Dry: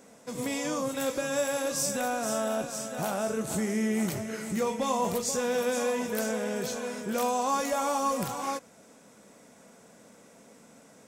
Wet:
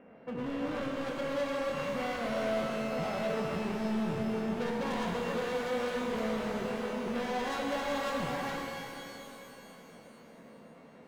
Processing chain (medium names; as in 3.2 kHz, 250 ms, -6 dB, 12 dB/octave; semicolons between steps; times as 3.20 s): sorted samples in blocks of 16 samples; low-pass 1.9 kHz 24 dB/octave; hard clipper -34.5 dBFS, distortion -7 dB; pitch-shifted reverb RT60 3 s, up +12 st, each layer -8 dB, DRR 0.5 dB